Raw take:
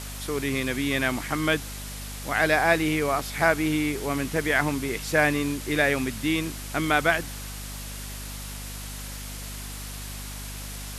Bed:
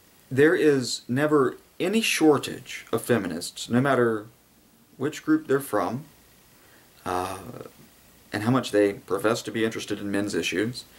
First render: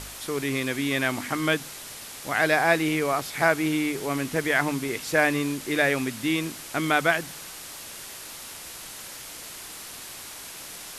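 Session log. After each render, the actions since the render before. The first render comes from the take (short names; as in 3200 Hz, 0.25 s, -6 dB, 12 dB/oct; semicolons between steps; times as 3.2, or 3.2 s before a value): de-hum 50 Hz, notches 5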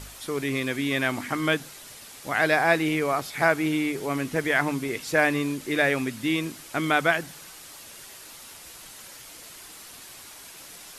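denoiser 6 dB, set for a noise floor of -41 dBFS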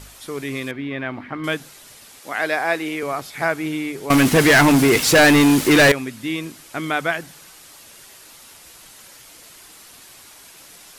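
0.71–1.44 air absorption 380 m; 2.19–3.03 HPF 250 Hz; 4.1–5.92 sample leveller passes 5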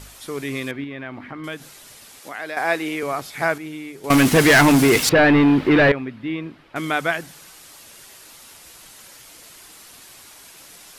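0.84–2.57 compressor 2:1, threshold -33 dBFS; 3.58–4.04 gain -8 dB; 5.09–6.76 air absorption 390 m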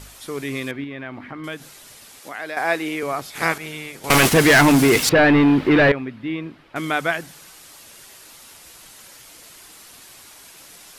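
3.34–4.32 spectral limiter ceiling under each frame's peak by 17 dB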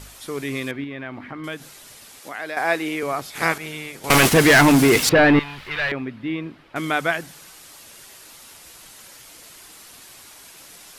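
5.39–5.92 passive tone stack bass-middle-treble 10-0-10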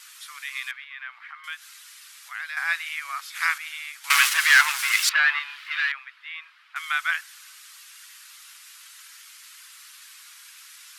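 steep high-pass 1200 Hz 36 dB/oct; high shelf 6800 Hz -4.5 dB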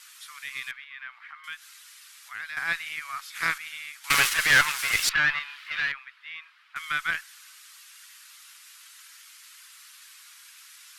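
tube stage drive 7 dB, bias 0.6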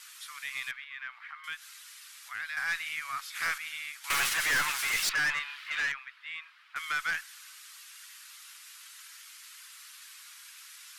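soft clip -24.5 dBFS, distortion -6 dB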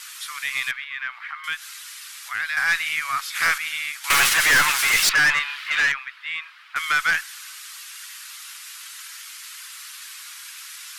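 gain +11 dB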